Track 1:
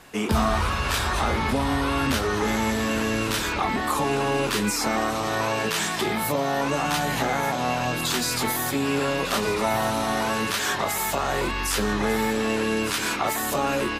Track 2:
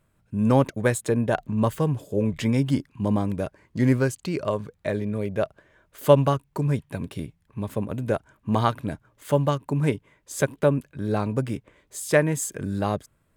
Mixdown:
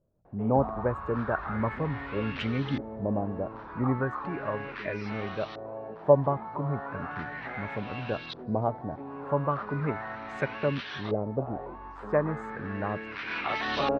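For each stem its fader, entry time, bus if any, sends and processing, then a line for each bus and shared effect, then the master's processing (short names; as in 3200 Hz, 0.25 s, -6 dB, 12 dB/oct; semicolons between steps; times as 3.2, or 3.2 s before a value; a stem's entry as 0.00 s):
-1.5 dB, 0.25 s, no send, rippled Chebyshev low-pass 5900 Hz, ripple 3 dB; auto duck -13 dB, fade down 0.70 s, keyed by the second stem
-8.0 dB, 0.00 s, no send, spectral gate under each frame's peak -30 dB strong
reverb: off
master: LFO low-pass saw up 0.36 Hz 530–3700 Hz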